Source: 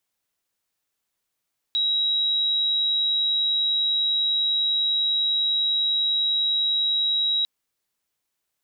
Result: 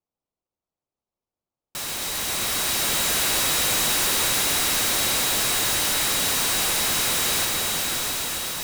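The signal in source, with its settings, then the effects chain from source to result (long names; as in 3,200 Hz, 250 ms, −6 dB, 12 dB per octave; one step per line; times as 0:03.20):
tone sine 3,850 Hz −19.5 dBFS 5.70 s
adaptive Wiener filter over 25 samples
on a send: echo that builds up and dies away 133 ms, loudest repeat 5, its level −13 dB
on the sum: short delay modulated by noise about 4,700 Hz, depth 0.068 ms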